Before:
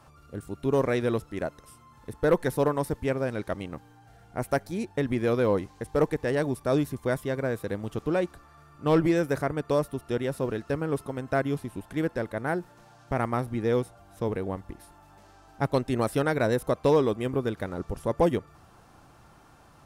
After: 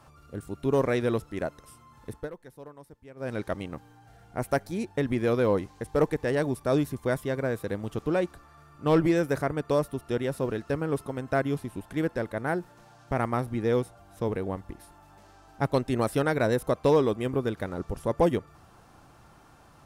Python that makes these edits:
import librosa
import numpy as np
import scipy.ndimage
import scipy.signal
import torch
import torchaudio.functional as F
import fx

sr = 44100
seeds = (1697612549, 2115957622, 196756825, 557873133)

y = fx.edit(x, sr, fx.fade_down_up(start_s=2.12, length_s=1.21, db=-21.0, fade_s=0.17), tone=tone)